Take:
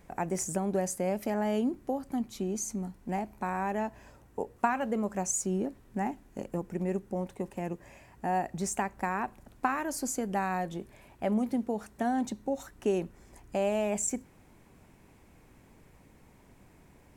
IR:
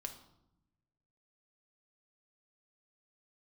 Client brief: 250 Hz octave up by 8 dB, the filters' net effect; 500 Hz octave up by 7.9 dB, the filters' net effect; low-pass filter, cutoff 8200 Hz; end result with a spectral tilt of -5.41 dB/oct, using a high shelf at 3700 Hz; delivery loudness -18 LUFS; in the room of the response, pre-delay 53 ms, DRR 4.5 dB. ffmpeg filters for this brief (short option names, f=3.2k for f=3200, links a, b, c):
-filter_complex "[0:a]lowpass=8.2k,equalizer=f=250:t=o:g=8,equalizer=f=500:t=o:g=8,highshelf=f=3.7k:g=-6,asplit=2[a][b];[1:a]atrim=start_sample=2205,adelay=53[c];[b][c]afir=irnorm=-1:irlink=0,volume=-1.5dB[d];[a][d]amix=inputs=2:normalize=0,volume=7dB"